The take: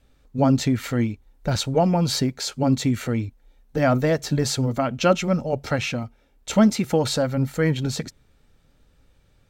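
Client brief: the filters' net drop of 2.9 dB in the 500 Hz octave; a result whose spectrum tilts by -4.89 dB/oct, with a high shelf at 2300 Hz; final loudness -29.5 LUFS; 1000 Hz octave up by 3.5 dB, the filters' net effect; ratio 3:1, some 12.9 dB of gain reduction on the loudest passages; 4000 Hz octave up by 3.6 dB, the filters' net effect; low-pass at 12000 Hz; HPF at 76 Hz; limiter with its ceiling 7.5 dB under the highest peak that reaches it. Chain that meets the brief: HPF 76 Hz; LPF 12000 Hz; bell 500 Hz -6 dB; bell 1000 Hz +8 dB; high shelf 2300 Hz -4 dB; bell 4000 Hz +7.5 dB; compressor 3:1, threshold -31 dBFS; gain +5 dB; limiter -19.5 dBFS

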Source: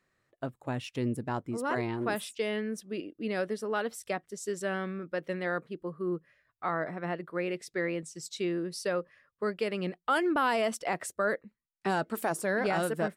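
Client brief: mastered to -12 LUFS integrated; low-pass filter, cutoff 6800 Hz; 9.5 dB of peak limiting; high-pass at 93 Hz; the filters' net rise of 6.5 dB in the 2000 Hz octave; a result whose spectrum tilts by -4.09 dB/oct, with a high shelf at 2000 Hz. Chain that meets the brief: HPF 93 Hz; LPF 6800 Hz; high shelf 2000 Hz +5.5 dB; bell 2000 Hz +5.5 dB; gain +22 dB; limiter 0 dBFS

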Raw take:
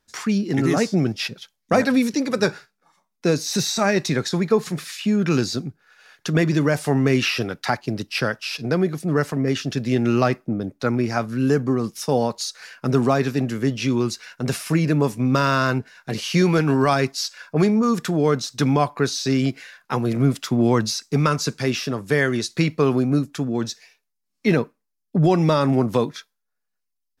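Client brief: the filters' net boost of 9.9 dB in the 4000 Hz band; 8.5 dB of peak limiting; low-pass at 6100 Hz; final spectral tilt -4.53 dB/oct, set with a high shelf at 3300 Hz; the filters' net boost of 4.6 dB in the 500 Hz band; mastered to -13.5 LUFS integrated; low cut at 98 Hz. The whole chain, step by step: HPF 98 Hz; LPF 6100 Hz; bell 500 Hz +5.5 dB; high shelf 3300 Hz +6.5 dB; bell 4000 Hz +8.5 dB; gain +6.5 dB; limiter -2.5 dBFS

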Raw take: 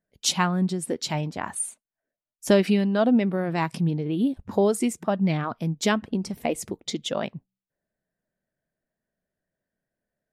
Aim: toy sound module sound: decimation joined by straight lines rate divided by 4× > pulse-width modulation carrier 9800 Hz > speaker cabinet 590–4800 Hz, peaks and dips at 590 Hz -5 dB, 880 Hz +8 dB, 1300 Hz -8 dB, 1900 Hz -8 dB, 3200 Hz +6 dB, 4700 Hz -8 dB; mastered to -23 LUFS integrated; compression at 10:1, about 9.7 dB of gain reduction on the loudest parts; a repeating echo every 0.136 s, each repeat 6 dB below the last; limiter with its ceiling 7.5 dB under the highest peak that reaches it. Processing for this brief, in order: compressor 10:1, threshold -24 dBFS; limiter -21 dBFS; feedback echo 0.136 s, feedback 50%, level -6 dB; decimation joined by straight lines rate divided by 4×; pulse-width modulation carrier 9800 Hz; speaker cabinet 590–4800 Hz, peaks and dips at 590 Hz -5 dB, 880 Hz +8 dB, 1300 Hz -8 dB, 1900 Hz -8 dB, 3200 Hz +6 dB, 4700 Hz -8 dB; gain +15 dB

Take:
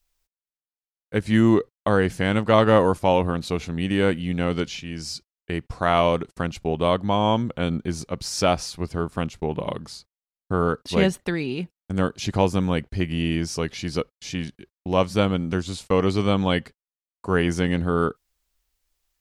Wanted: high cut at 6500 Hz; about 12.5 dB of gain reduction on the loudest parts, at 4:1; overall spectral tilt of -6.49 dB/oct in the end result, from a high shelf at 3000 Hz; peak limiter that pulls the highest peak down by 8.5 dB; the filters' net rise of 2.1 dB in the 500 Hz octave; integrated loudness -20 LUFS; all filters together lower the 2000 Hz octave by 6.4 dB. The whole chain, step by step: LPF 6500 Hz; bell 500 Hz +3 dB; bell 2000 Hz -6.5 dB; high shelf 3000 Hz -6 dB; compressor 4:1, threshold -27 dBFS; gain +14 dB; limiter -7.5 dBFS

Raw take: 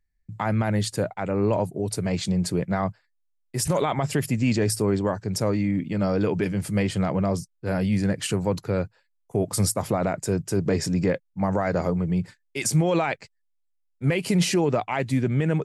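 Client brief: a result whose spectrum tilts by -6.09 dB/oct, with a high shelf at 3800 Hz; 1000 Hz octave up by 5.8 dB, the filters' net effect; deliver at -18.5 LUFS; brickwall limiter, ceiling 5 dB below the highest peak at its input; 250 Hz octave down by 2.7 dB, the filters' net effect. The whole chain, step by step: bell 250 Hz -4.5 dB; bell 1000 Hz +8.5 dB; high shelf 3800 Hz -6.5 dB; gain +8 dB; limiter -5.5 dBFS

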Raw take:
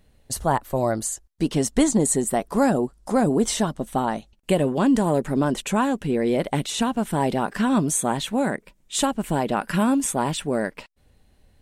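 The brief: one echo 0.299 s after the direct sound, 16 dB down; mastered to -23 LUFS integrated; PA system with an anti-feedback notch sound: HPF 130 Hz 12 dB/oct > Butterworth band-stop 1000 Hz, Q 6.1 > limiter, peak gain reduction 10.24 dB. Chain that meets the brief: HPF 130 Hz 12 dB/oct; Butterworth band-stop 1000 Hz, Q 6.1; echo 0.299 s -16 dB; gain +5.5 dB; limiter -13.5 dBFS

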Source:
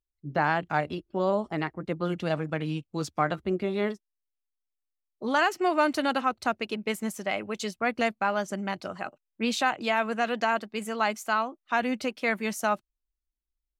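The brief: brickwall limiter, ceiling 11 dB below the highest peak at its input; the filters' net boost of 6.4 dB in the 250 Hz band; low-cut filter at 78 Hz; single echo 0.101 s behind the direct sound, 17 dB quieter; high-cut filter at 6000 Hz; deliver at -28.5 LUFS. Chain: HPF 78 Hz; LPF 6000 Hz; bell 250 Hz +8 dB; limiter -20.5 dBFS; echo 0.101 s -17 dB; gain +2.5 dB

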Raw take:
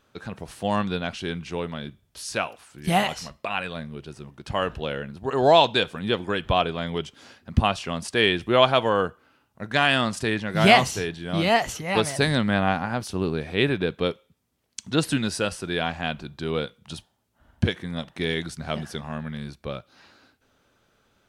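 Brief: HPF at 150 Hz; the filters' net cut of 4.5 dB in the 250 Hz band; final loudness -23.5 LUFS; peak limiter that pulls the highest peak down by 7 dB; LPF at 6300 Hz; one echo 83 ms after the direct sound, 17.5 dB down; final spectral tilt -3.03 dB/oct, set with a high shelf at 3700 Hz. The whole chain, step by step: HPF 150 Hz; LPF 6300 Hz; bell 250 Hz -5 dB; high shelf 3700 Hz -7 dB; limiter -10.5 dBFS; echo 83 ms -17.5 dB; gain +4.5 dB

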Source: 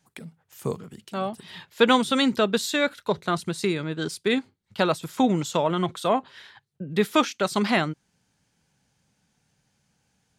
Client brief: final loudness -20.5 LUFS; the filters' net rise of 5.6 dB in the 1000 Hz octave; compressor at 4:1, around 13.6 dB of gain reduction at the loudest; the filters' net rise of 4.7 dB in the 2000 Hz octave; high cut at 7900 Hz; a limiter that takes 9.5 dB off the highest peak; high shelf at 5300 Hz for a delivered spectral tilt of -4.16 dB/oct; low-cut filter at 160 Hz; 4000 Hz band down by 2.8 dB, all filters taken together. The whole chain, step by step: HPF 160 Hz; LPF 7900 Hz; bell 1000 Hz +6 dB; bell 2000 Hz +5 dB; bell 4000 Hz -7.5 dB; high shelf 5300 Hz +6 dB; compressor 4:1, threshold -27 dBFS; gain +13.5 dB; limiter -6.5 dBFS

